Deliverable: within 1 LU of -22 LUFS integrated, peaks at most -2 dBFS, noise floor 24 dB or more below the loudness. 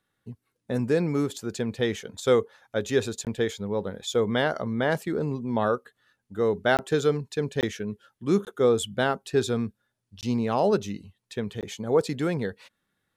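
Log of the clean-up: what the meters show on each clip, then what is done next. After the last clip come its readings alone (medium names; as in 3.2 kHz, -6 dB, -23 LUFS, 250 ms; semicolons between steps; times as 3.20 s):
dropouts 6; longest dropout 18 ms; loudness -27.0 LUFS; peak level -10.0 dBFS; loudness target -22.0 LUFS
-> interpolate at 3.25/6.77/7.61/8.45/10.21/11.61 s, 18 ms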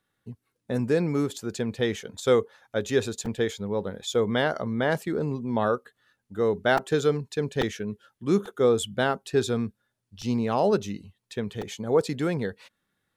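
dropouts 0; loudness -27.0 LUFS; peak level -10.0 dBFS; loudness target -22.0 LUFS
-> trim +5 dB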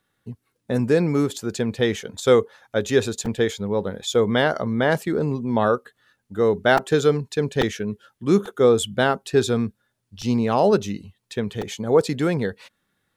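loudness -22.0 LUFS; peak level -5.0 dBFS; noise floor -74 dBFS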